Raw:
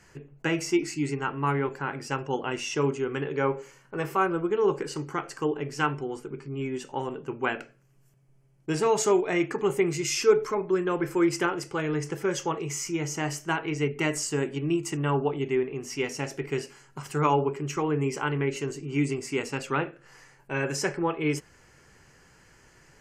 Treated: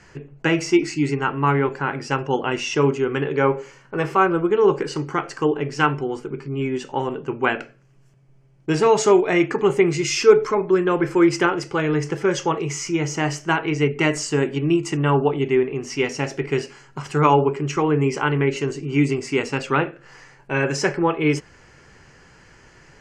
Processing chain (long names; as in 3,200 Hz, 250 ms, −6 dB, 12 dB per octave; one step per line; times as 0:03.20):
low-pass filter 5,800 Hz 12 dB per octave
level +7.5 dB